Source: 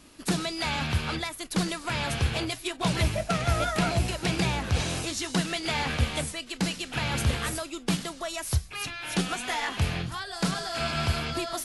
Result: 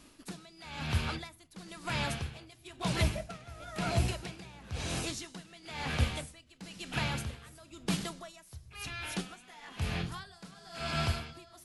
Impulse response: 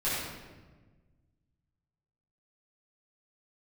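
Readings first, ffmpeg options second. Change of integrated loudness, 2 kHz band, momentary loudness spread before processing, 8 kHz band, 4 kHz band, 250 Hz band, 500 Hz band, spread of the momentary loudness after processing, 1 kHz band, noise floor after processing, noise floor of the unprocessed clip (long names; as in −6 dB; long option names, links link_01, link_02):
−7.0 dB, −8.5 dB, 5 LU, −10.0 dB, −9.0 dB, −9.0 dB, −9.0 dB, 17 LU, −9.0 dB, −59 dBFS, −45 dBFS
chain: -filter_complex "[0:a]asplit=2[link_01][link_02];[1:a]atrim=start_sample=2205,asetrate=61740,aresample=44100,lowshelf=frequency=420:gain=7[link_03];[link_02][link_03]afir=irnorm=-1:irlink=0,volume=-24.5dB[link_04];[link_01][link_04]amix=inputs=2:normalize=0,aeval=exprs='val(0)*pow(10,-20*(0.5-0.5*cos(2*PI*1*n/s))/20)':channel_layout=same,volume=-3.5dB"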